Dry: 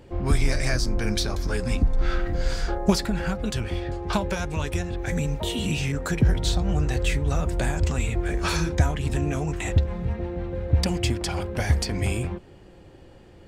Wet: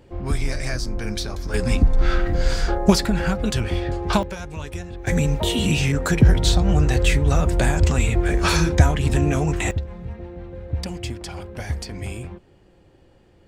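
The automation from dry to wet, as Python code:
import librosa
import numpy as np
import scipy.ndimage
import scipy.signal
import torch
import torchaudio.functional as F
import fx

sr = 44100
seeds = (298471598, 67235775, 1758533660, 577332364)

y = fx.gain(x, sr, db=fx.steps((0.0, -2.0), (1.54, 5.0), (4.23, -4.5), (5.07, 6.0), (9.71, -5.5)))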